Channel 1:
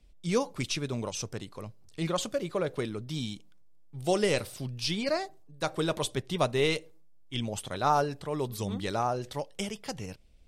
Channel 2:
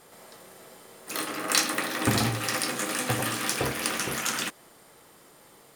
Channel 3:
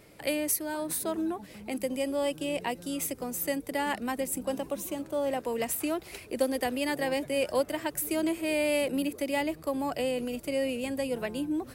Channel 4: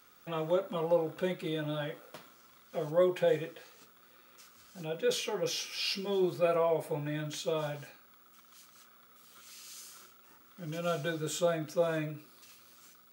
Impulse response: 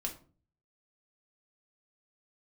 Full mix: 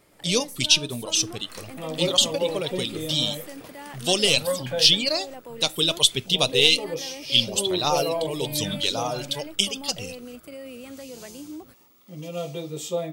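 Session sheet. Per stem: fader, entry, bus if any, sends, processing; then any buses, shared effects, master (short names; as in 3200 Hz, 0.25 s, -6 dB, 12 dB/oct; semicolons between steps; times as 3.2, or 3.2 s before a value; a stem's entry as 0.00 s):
+1.0 dB, 0.00 s, send -14.5 dB, reverb removal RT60 1 s; gate with hold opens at -48 dBFS; resonant high shelf 2300 Hz +10.5 dB, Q 3
-10.5 dB, 0.00 s, no send, auto duck -10 dB, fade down 1.65 s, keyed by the first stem
-6.0 dB, 0.00 s, no send, limiter -26 dBFS, peak gain reduction 10.5 dB
+2.5 dB, 1.50 s, no send, LFO notch square 0.21 Hz 370–1500 Hz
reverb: on, RT60 0.40 s, pre-delay 4 ms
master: dry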